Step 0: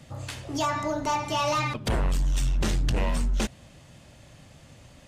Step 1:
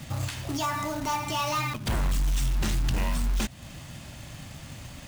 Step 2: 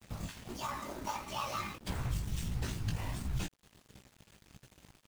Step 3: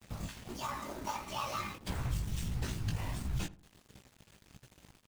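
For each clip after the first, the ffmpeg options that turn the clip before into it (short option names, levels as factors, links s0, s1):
-af "alimiter=level_in=2.11:limit=0.0631:level=0:latency=1:release=262,volume=0.473,acrusher=bits=3:mode=log:mix=0:aa=0.000001,equalizer=f=480:t=o:w=0.81:g=-8,volume=2.82"
-af "afftfilt=real='hypot(re,im)*cos(2*PI*random(0))':imag='hypot(re,im)*sin(2*PI*random(1))':win_size=512:overlap=0.75,flanger=delay=15.5:depth=4:speed=1.5,aeval=exprs='sgn(val(0))*max(abs(val(0))-0.00335,0)':c=same"
-filter_complex "[0:a]asplit=2[s0][s1];[s1]adelay=80,lowpass=f=990:p=1,volume=0.168,asplit=2[s2][s3];[s3]adelay=80,lowpass=f=990:p=1,volume=0.36,asplit=2[s4][s5];[s5]adelay=80,lowpass=f=990:p=1,volume=0.36[s6];[s0][s2][s4][s6]amix=inputs=4:normalize=0"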